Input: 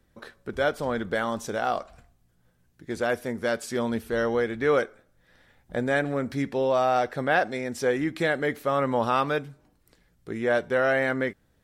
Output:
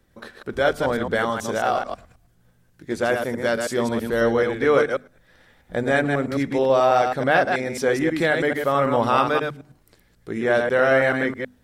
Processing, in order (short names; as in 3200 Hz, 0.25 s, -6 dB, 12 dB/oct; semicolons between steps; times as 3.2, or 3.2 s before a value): reverse delay 0.108 s, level -4.5 dB; notches 50/100/150/200/250 Hz; gain +4 dB